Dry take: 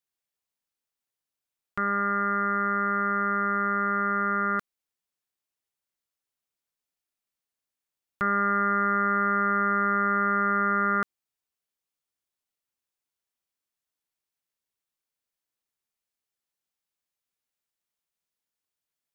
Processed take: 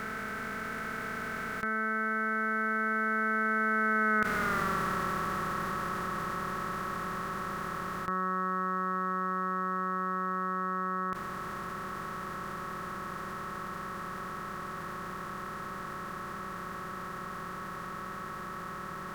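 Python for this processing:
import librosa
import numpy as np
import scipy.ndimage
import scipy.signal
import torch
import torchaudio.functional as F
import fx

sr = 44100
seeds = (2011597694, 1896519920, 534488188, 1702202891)

y = fx.bin_compress(x, sr, power=0.2)
y = fx.doppler_pass(y, sr, speed_mps=28, closest_m=7.3, pass_at_s=4.52)
y = fx.env_flatten(y, sr, amount_pct=70)
y = F.gain(torch.from_numpy(y), 1.5).numpy()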